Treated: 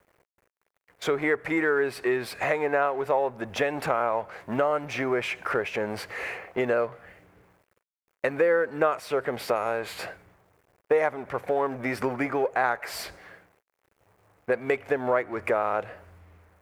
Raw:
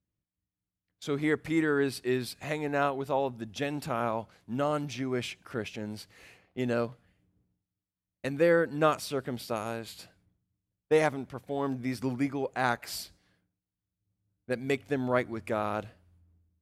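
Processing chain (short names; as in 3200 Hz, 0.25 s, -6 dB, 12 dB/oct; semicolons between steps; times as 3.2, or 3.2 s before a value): G.711 law mismatch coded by mu; band shelf 960 Hz +14.5 dB 3 oct; compressor 3:1, threshold -27 dBFS, peak gain reduction 16.5 dB; gain +2 dB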